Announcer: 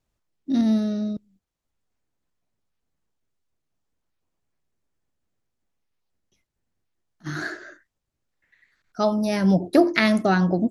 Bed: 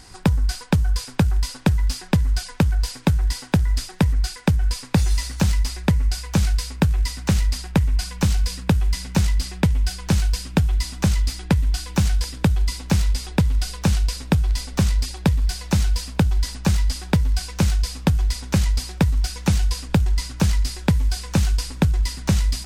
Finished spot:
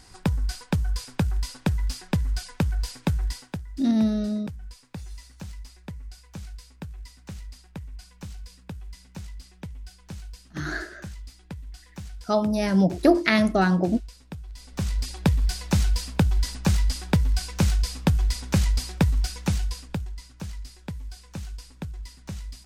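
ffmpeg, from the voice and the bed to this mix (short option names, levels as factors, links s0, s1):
-filter_complex "[0:a]adelay=3300,volume=0.891[s0];[1:a]volume=3.76,afade=t=out:st=3.24:d=0.39:silence=0.199526,afade=t=in:st=14.54:d=0.72:silence=0.133352,afade=t=out:st=19.11:d=1.03:silence=0.188365[s1];[s0][s1]amix=inputs=2:normalize=0"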